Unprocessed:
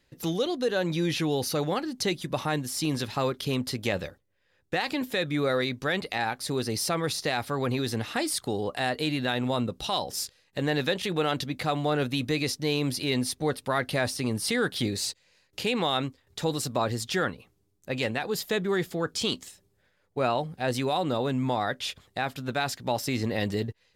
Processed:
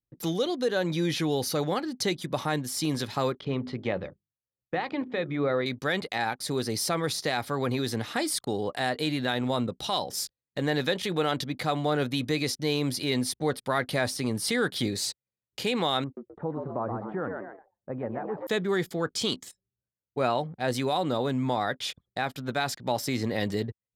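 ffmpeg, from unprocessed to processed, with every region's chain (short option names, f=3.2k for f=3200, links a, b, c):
-filter_complex "[0:a]asettb=1/sr,asplit=3[a][b][c];[a]atrim=end=3.374[d];[b]atrim=start=3.37:end=5.66,asetpts=PTS-STARTPTS,afade=t=in:d=0.004:c=qsin,afade=t=out:st=2.286:d=0.004:c=qsin,lowpass=2.2k,equalizer=f=1.6k:w=4.4:g=-4.5,bandreject=f=50:t=h:w=6,bandreject=f=100:t=h:w=6,bandreject=f=150:t=h:w=6,bandreject=f=200:t=h:w=6,bandreject=f=250:t=h:w=6,bandreject=f=300:t=h:w=6,bandreject=f=350:t=h:w=6,bandreject=f=400:t=h:w=6[e];[c]atrim=start=5.656[f];[d][e]acrossfade=d=0.004:c1=hsin:c2=qsin[g];[g][f]acrossfade=d=0.004:c1=qsin:c2=hsin,asettb=1/sr,asplit=3[h][i][j];[h]atrim=end=16.044[k];[i]atrim=start=16.04:end=18.47,asetpts=PTS-STARTPTS,afade=t=in:d=0.004:c=qsin,afade=t=out:st=2.426:d=0.004:c=qsin,lowpass=f=1.3k:w=0.5412,lowpass=f=1.3k:w=1.3066,asplit=5[l][m][n][o][p];[m]adelay=127,afreqshift=98,volume=-6.5dB[q];[n]adelay=254,afreqshift=196,volume=-15.6dB[r];[o]adelay=381,afreqshift=294,volume=-24.7dB[s];[p]adelay=508,afreqshift=392,volume=-33.9dB[t];[l][q][r][s][t]amix=inputs=5:normalize=0,atrim=end_sample=107163,acompressor=threshold=-33dB:ratio=1.5:attack=3.2:release=140:knee=1:detection=peak[u];[j]atrim=start=18.466[v];[k][u]acrossfade=d=0.004:c1=hsin:c2=qsin[w];[w][v]acrossfade=d=0.004:c1=qsin:c2=hsin,highpass=94,anlmdn=0.0158,bandreject=f=2.7k:w=12"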